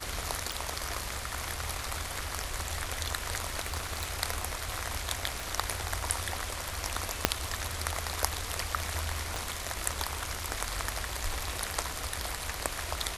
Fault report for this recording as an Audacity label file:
0.520000	0.520000	click
3.660000	4.140000	clipping −26.5 dBFS
5.400000	5.400000	click
7.250000	7.250000	click −3 dBFS
9.360000	9.360000	click

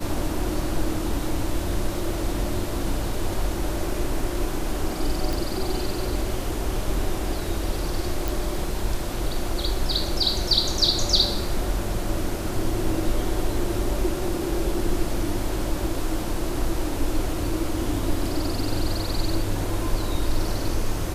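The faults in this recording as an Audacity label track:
5.330000	5.330000	click
8.280000	8.280000	click

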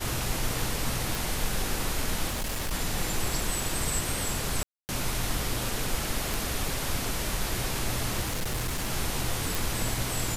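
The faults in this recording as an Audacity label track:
1.150000	1.150000	click
2.280000	2.730000	clipping −27 dBFS
4.630000	4.890000	drop-out 259 ms
6.340000	6.340000	click
8.210000	8.900000	clipping −26 dBFS
9.550000	9.550000	click

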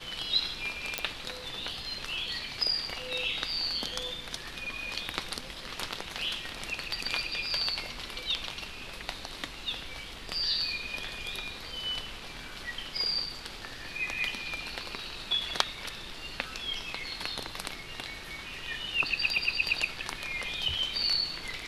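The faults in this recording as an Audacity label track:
0.980000	0.980000	click −10 dBFS

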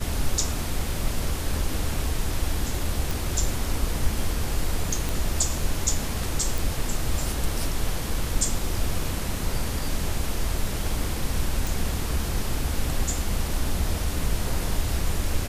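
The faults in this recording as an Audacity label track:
3.110000	3.110000	click
5.090000	5.090000	click
6.580000	6.580000	click
11.670000	11.670000	click

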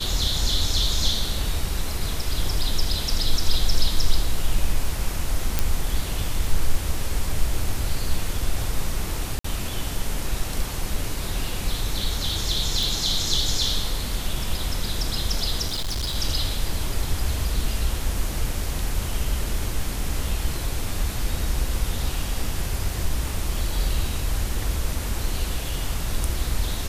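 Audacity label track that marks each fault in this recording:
5.590000	5.590000	click
9.390000	9.440000	drop-out 54 ms
12.830000	12.830000	click
15.670000	16.160000	clipping −23 dBFS

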